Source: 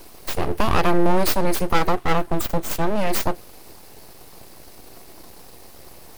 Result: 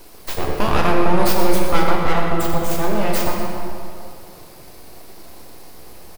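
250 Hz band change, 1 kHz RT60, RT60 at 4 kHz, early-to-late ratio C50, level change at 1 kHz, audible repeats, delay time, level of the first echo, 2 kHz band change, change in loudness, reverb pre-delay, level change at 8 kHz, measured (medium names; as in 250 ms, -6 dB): +2.5 dB, 2.6 s, 1.7 s, 0.5 dB, +2.5 dB, 1, 123 ms, -9.5 dB, +3.0 dB, +2.0 dB, 8 ms, +1.0 dB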